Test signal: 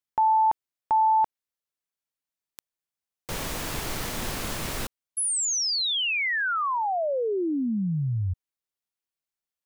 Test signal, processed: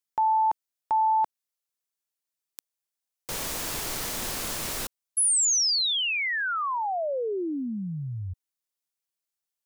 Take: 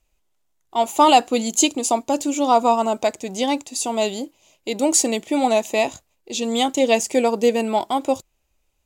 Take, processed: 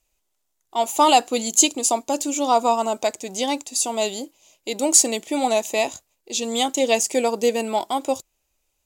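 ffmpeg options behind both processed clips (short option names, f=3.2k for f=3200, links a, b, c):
-af "bass=f=250:g=-5,treble=f=4k:g=6,volume=-2dB"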